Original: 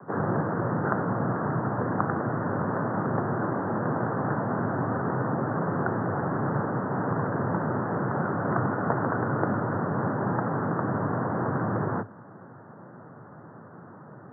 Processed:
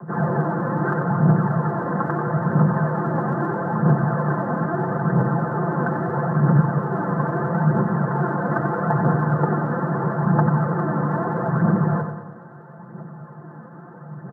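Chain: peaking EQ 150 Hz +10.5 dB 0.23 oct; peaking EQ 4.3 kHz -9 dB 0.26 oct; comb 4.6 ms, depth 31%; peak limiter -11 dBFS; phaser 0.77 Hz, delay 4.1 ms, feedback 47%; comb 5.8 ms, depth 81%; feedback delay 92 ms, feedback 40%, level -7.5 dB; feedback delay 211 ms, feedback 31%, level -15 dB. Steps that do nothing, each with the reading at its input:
peaking EQ 4.3 kHz: input has nothing above 1.7 kHz

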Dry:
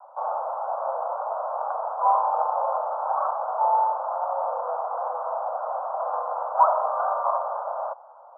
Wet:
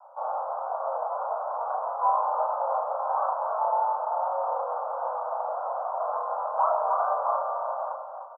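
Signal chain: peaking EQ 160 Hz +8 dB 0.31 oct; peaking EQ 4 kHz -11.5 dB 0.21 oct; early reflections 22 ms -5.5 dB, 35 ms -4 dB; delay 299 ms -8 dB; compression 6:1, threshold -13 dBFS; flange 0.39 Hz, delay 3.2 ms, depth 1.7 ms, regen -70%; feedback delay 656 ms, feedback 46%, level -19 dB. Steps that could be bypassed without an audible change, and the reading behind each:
peaking EQ 160 Hz: input has nothing below 450 Hz; peaking EQ 4 kHz: input has nothing above 1.4 kHz

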